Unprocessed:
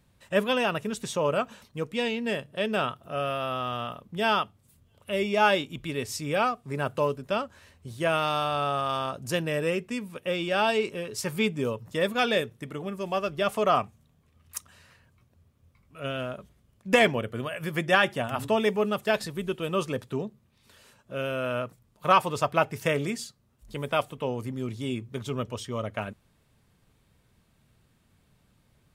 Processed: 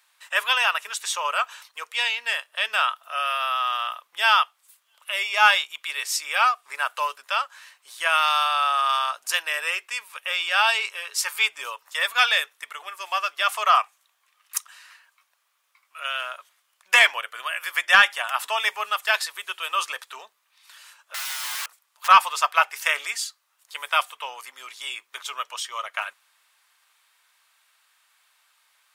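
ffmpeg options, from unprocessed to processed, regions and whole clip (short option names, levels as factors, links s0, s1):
-filter_complex "[0:a]asettb=1/sr,asplit=3[s0][s1][s2];[s0]atrim=end=21.144[s3];[s1]atrim=start=21.14:end=22.08,asetpts=PTS-STARTPTS,afade=t=in:d=0.004:c=qsin,afade=t=out:st=0.936:d=0.004:c=qsin,lowshelf=f=81:g=2.5,aeval=exprs='(mod(50.1*val(0)+1,2)-1)/50.1':c=same[s4];[s2]atrim=start=22.076[s5];[s3][s4]acrossfade=d=0.004:c1=hsin:c2=qsin[s6];[s6][s5]acrossfade=d=0.004:c1=qsin:c2=hsin,highpass=f=1000:w=0.5412,highpass=f=1000:w=1.3066,acontrast=77,volume=1.33"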